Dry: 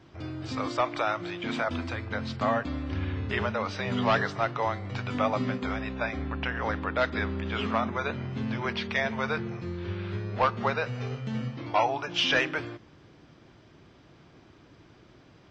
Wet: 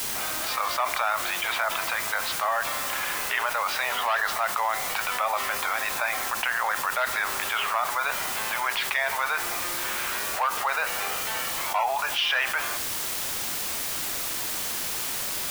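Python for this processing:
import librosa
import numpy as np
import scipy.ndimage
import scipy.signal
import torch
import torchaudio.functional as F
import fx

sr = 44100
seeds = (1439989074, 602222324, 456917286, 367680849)

y = scipy.signal.sosfilt(scipy.signal.butter(4, 750.0, 'highpass', fs=sr, output='sos'), x)
y = fx.high_shelf(y, sr, hz=4700.0, db=-10.0)
y = fx.quant_dither(y, sr, seeds[0], bits=8, dither='triangular')
y = fx.env_flatten(y, sr, amount_pct=70)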